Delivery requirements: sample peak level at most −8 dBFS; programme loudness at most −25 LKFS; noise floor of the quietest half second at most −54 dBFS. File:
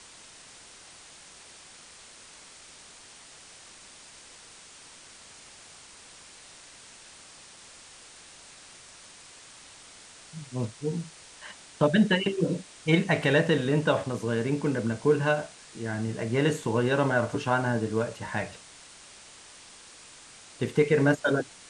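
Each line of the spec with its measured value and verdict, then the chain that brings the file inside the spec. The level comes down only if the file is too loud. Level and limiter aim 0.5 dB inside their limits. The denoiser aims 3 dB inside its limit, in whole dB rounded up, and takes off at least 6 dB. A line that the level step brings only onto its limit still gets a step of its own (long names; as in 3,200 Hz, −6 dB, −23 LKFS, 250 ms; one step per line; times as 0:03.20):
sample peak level −9.5 dBFS: in spec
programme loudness −26.5 LKFS: in spec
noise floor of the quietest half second −50 dBFS: out of spec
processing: broadband denoise 7 dB, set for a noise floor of −50 dBFS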